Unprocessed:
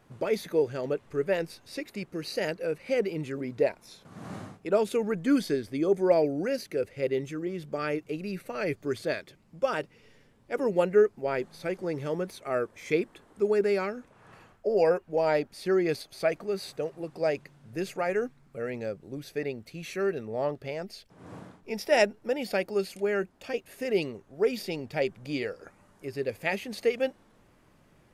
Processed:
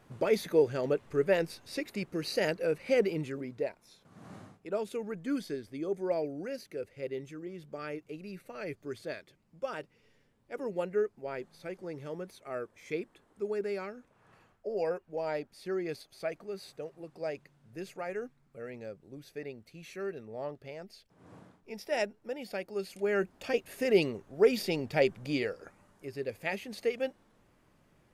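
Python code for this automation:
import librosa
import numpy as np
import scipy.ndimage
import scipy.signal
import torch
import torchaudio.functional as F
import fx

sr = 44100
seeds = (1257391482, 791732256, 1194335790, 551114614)

y = fx.gain(x, sr, db=fx.line((3.1, 0.5), (3.66, -9.0), (22.69, -9.0), (23.33, 2.0), (25.11, 2.0), (26.12, -5.0)))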